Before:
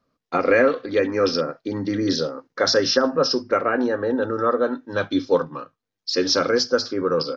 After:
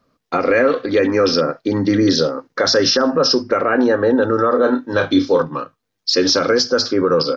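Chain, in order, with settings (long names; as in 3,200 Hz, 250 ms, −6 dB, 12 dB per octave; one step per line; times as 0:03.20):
brickwall limiter −14.5 dBFS, peak gain reduction 9 dB
0:04.48–0:05.42: double-tracking delay 32 ms −7 dB
level +8.5 dB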